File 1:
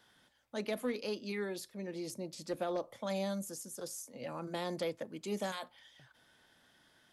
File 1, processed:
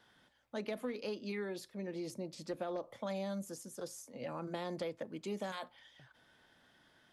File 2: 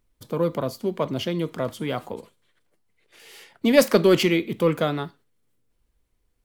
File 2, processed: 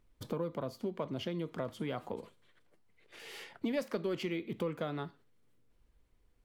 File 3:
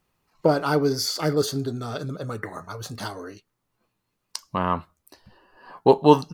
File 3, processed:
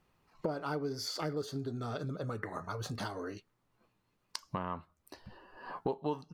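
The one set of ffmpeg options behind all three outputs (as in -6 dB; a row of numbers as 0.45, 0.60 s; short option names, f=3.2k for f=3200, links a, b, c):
-af "highshelf=f=5.4k:g=-9.5,acompressor=threshold=-37dB:ratio=4,volume=1dB"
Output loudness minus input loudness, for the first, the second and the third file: -2.5, -15.5, -15.0 LU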